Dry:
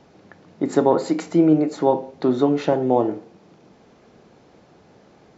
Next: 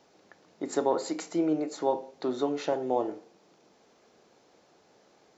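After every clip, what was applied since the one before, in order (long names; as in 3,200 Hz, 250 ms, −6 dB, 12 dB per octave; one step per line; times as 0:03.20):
bass and treble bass −12 dB, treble +8 dB
level −8 dB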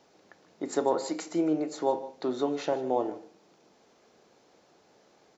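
single-tap delay 151 ms −17.5 dB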